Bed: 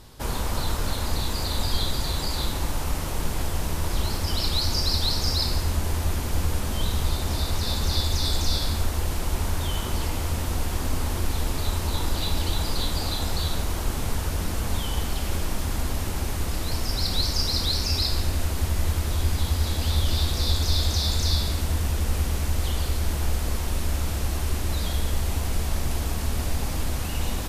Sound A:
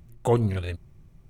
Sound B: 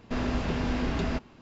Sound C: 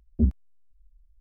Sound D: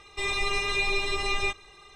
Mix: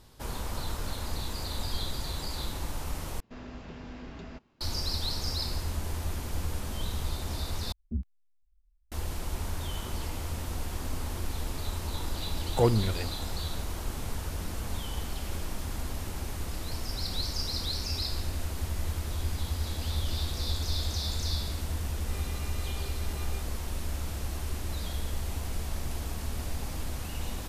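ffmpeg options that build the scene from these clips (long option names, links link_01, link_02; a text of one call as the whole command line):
ffmpeg -i bed.wav -i cue0.wav -i cue1.wav -i cue2.wav -i cue3.wav -filter_complex "[0:a]volume=-8dB[link_01];[3:a]equalizer=frequency=560:width_type=o:width=1.4:gain=-9.5[link_02];[4:a]equalizer=frequency=2200:width=1.5:gain=-6[link_03];[link_01]asplit=3[link_04][link_05][link_06];[link_04]atrim=end=3.204[link_07];[2:a]atrim=end=1.41,asetpts=PTS-STARTPTS,volume=-14.5dB[link_08];[link_05]atrim=start=4.606:end=7.724[link_09];[link_02]atrim=end=1.2,asetpts=PTS-STARTPTS,volume=-10.5dB[link_10];[link_06]atrim=start=8.916[link_11];[1:a]atrim=end=1.29,asetpts=PTS-STARTPTS,volume=-2dB,afade=type=in:duration=0.004:curve=hsin,afade=type=out:start_time=1.286:duration=0.004:curve=hsin,adelay=12320[link_12];[link_03]atrim=end=1.95,asetpts=PTS-STARTPTS,volume=-17.5dB,afade=type=in:duration=0.004:curve=hsin,afade=type=out:start_time=1.946:duration=0.004:curve=hsin,adelay=21900[link_13];[link_07][link_08]acrossfade=duration=0.004:curve1=hsin:curve2=hsin[link_14];[link_14][link_09]acrossfade=duration=0.004:curve1=hsin:curve2=hsin[link_15];[link_15][link_10]acrossfade=duration=0.004:curve1=hsin:curve2=hsin[link_16];[link_16][link_11]acrossfade=duration=0.004:curve1=hsin:curve2=hsin[link_17];[link_17][link_12][link_13]amix=inputs=3:normalize=0" out.wav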